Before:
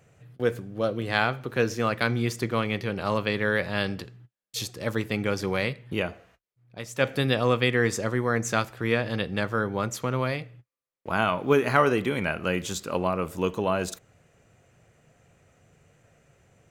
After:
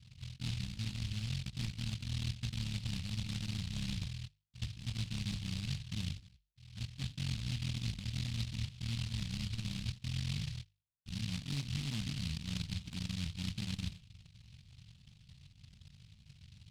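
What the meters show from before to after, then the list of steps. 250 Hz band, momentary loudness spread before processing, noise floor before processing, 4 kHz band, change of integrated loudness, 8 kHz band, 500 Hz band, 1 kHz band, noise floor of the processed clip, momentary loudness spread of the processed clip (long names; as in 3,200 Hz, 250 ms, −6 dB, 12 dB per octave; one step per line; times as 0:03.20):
−13.5 dB, 11 LU, −71 dBFS, −6.5 dB, −13.0 dB, −10.5 dB, −38.0 dB, −31.0 dB, −68 dBFS, 20 LU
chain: sub-harmonics by changed cycles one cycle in 3, muted
inverse Chebyshev low-pass filter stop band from 680 Hz, stop band 60 dB
parametric band 85 Hz +8.5 dB 2.2 octaves
mains-hum notches 50/100/150 Hz
reversed playback
downward compressor 6 to 1, threshold −37 dBFS, peak gain reduction 15.5 dB
reversed playback
short delay modulated by noise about 3,400 Hz, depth 0.41 ms
level +1.5 dB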